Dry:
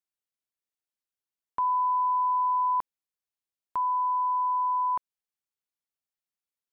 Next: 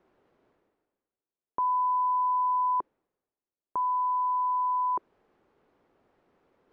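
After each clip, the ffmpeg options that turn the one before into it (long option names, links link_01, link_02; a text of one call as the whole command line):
ffmpeg -i in.wav -af "lowpass=1200,equalizer=frequency=380:width=0.98:gain=10,areverse,acompressor=mode=upward:threshold=-42dB:ratio=2.5,areverse,volume=-1dB" out.wav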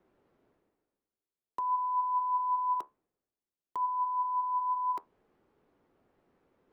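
ffmpeg -i in.wav -filter_complex "[0:a]acrossover=split=360[link_01][link_02];[link_01]aeval=exprs='(mod(106*val(0)+1,2)-1)/106':channel_layout=same[link_03];[link_02]flanger=delay=9.3:depth=5.1:regen=60:speed=0.54:shape=triangular[link_04];[link_03][link_04]amix=inputs=2:normalize=0" out.wav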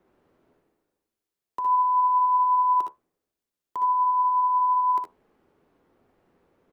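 ffmpeg -i in.wav -af "aecho=1:1:62|74:0.501|0.422,volume=4dB" out.wav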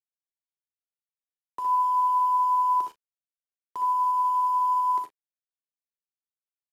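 ffmpeg -i in.wav -filter_complex "[0:a]acrusher=bits=7:mix=0:aa=0.000001,asplit=2[link_01][link_02];[link_02]adelay=38,volume=-13dB[link_03];[link_01][link_03]amix=inputs=2:normalize=0,aresample=32000,aresample=44100,volume=-3.5dB" out.wav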